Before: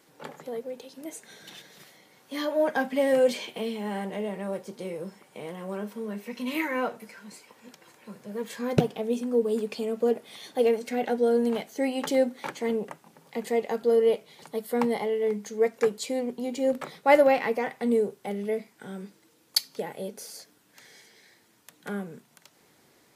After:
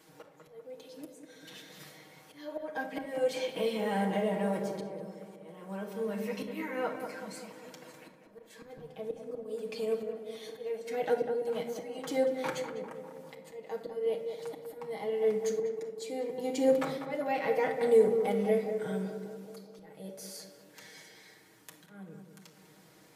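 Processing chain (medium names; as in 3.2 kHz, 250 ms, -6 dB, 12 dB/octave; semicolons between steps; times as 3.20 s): slow attack 786 ms; tape echo 197 ms, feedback 69%, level -6 dB, low-pass 1.4 kHz; on a send at -1 dB: reverberation, pre-delay 6 ms; on the sum: trim -1.5 dB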